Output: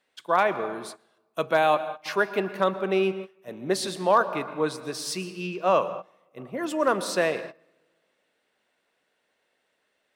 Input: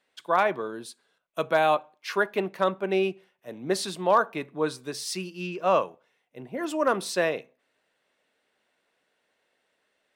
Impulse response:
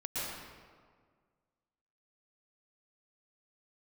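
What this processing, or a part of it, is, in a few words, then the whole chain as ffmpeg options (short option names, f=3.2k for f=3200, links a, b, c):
keyed gated reverb: -filter_complex "[0:a]asplit=3[a][b][c];[1:a]atrim=start_sample=2205[d];[b][d]afir=irnorm=-1:irlink=0[e];[c]apad=whole_len=448044[f];[e][f]sidechaingate=range=-19dB:threshold=-45dB:ratio=16:detection=peak,volume=-15.5dB[g];[a][g]amix=inputs=2:normalize=0"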